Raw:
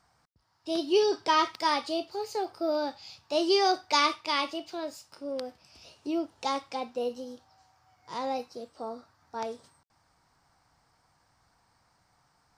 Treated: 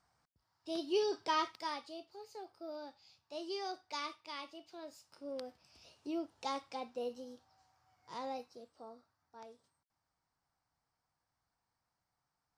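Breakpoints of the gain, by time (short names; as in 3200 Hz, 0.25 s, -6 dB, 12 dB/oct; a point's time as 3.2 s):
1.38 s -9 dB
1.93 s -17 dB
4.5 s -17 dB
5.28 s -8.5 dB
8.13 s -8.5 dB
9.37 s -18.5 dB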